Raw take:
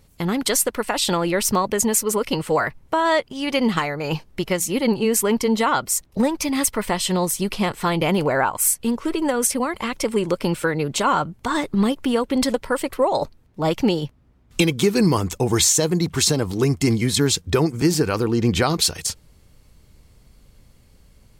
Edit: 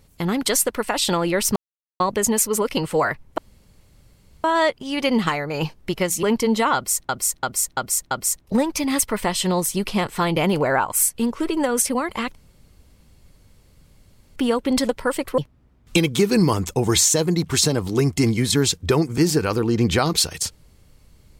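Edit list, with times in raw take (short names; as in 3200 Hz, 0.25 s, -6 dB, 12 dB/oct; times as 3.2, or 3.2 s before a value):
1.56 insert silence 0.44 s
2.94 insert room tone 1.06 s
4.73–5.24 cut
5.76–6.1 loop, 5 plays
10–12.01 room tone
13.03–14.02 cut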